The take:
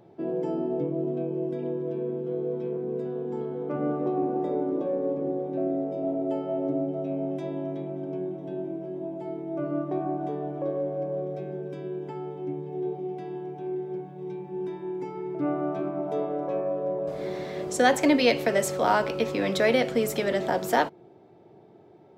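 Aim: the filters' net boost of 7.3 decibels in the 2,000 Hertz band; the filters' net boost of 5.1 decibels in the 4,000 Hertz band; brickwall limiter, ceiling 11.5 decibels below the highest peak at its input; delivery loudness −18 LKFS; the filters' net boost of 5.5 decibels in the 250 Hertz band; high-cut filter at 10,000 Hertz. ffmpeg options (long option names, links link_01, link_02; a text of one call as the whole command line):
ffmpeg -i in.wav -af "lowpass=10000,equalizer=frequency=250:width_type=o:gain=7,equalizer=frequency=2000:width_type=o:gain=8,equalizer=frequency=4000:width_type=o:gain=3.5,volume=9dB,alimiter=limit=-6dB:level=0:latency=1" out.wav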